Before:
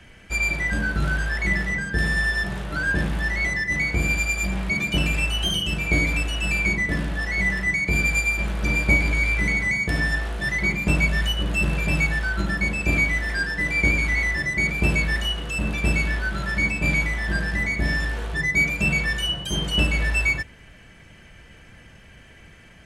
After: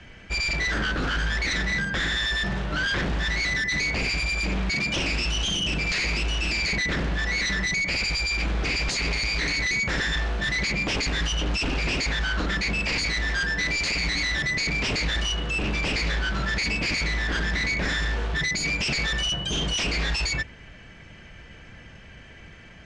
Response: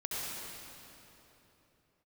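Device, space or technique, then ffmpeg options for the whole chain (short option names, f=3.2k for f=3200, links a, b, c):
synthesiser wavefolder: -af "aeval=exprs='0.075*(abs(mod(val(0)/0.075+3,4)-2)-1)':c=same,lowpass=f=6.5k:w=0.5412,lowpass=f=6.5k:w=1.3066,volume=2dB"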